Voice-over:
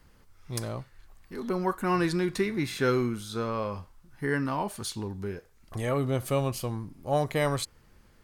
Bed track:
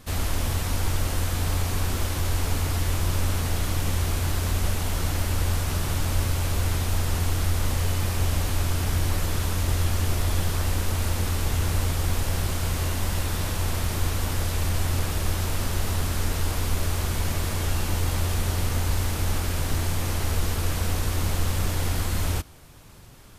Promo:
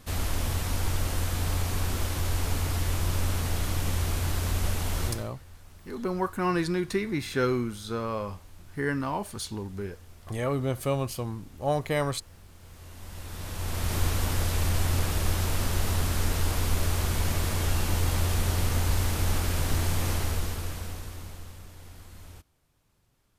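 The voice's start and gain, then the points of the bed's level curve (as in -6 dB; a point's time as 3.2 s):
4.55 s, -0.5 dB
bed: 5.06 s -3 dB
5.34 s -26.5 dB
12.51 s -26.5 dB
13.95 s -1 dB
20.12 s -1 dB
21.68 s -21.5 dB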